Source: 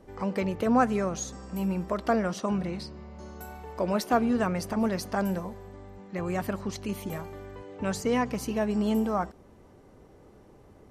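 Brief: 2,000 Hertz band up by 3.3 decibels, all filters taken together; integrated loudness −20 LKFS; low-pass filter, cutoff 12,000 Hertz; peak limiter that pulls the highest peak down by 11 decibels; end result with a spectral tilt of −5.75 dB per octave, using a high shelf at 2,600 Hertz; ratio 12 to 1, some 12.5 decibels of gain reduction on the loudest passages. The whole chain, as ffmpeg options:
ffmpeg -i in.wav -af "lowpass=12000,equalizer=frequency=2000:width_type=o:gain=7,highshelf=frequency=2600:gain=-6.5,acompressor=threshold=-30dB:ratio=12,volume=20dB,alimiter=limit=-10dB:level=0:latency=1" out.wav

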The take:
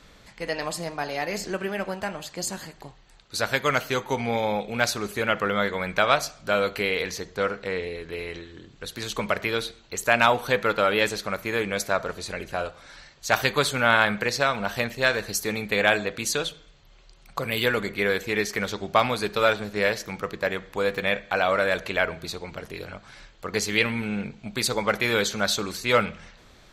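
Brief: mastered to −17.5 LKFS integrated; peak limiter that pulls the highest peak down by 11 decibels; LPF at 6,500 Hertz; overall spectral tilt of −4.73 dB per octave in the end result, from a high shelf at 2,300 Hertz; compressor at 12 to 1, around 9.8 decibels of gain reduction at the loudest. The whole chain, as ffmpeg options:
ffmpeg -i in.wav -af "lowpass=6500,highshelf=frequency=2300:gain=-7.5,acompressor=threshold=-25dB:ratio=12,volume=16.5dB,alimiter=limit=-5dB:level=0:latency=1" out.wav

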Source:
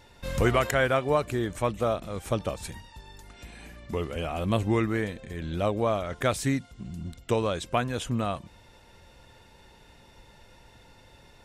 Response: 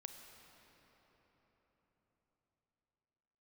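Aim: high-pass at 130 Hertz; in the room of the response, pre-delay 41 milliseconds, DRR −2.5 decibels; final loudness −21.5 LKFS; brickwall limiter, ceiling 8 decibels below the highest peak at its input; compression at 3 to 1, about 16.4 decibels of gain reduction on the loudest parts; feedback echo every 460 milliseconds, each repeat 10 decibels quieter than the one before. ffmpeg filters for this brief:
-filter_complex "[0:a]highpass=130,acompressor=threshold=-43dB:ratio=3,alimiter=level_in=8dB:limit=-24dB:level=0:latency=1,volume=-8dB,aecho=1:1:460|920|1380|1840:0.316|0.101|0.0324|0.0104,asplit=2[link_01][link_02];[1:a]atrim=start_sample=2205,adelay=41[link_03];[link_02][link_03]afir=irnorm=-1:irlink=0,volume=7dB[link_04];[link_01][link_04]amix=inputs=2:normalize=0,volume=19.5dB"

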